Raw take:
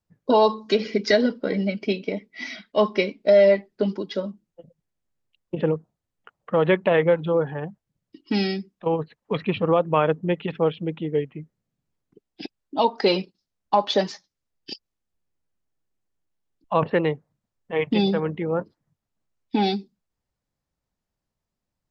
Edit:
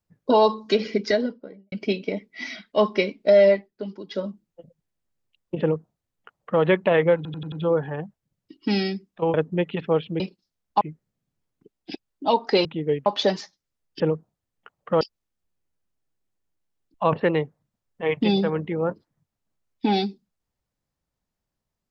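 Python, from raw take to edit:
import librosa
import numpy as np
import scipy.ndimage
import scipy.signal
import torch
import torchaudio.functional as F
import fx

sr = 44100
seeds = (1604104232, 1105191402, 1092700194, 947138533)

y = fx.studio_fade_out(x, sr, start_s=0.84, length_s=0.88)
y = fx.edit(y, sr, fx.fade_down_up(start_s=3.48, length_s=0.75, db=-9.5, fade_s=0.24),
    fx.duplicate(start_s=5.61, length_s=1.01, to_s=14.71),
    fx.stutter(start_s=7.16, slice_s=0.09, count=5),
    fx.cut(start_s=8.98, length_s=1.07),
    fx.swap(start_s=10.91, length_s=0.41, other_s=13.16, other_length_s=0.61), tone=tone)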